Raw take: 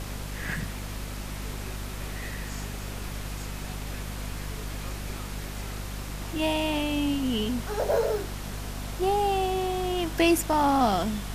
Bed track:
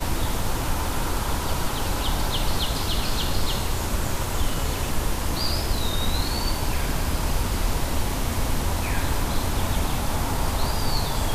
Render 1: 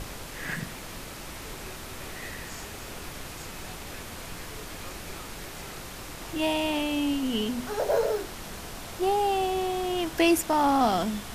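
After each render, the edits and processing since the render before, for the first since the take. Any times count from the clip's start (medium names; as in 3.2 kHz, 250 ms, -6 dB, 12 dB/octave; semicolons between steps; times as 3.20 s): de-hum 50 Hz, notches 5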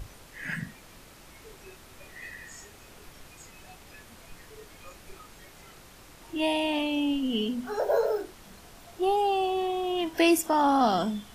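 noise print and reduce 11 dB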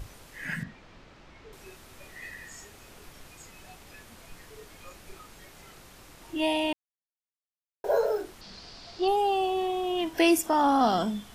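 0.63–1.53 s: distance through air 160 m; 6.73–7.84 s: mute; 8.41–9.08 s: resonant low-pass 4.7 kHz, resonance Q 6.2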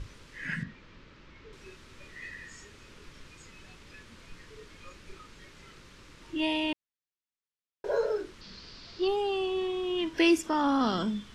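low-pass 5.6 kHz 12 dB/octave; peaking EQ 730 Hz -14 dB 0.48 oct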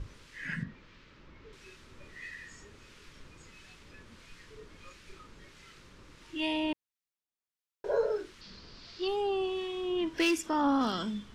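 hard clipper -17.5 dBFS, distortion -23 dB; harmonic tremolo 1.5 Hz, depth 50%, crossover 1.3 kHz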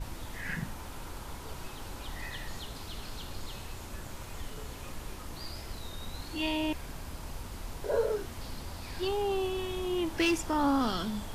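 add bed track -17 dB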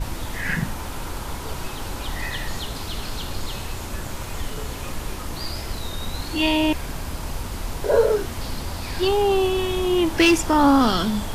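trim +11.5 dB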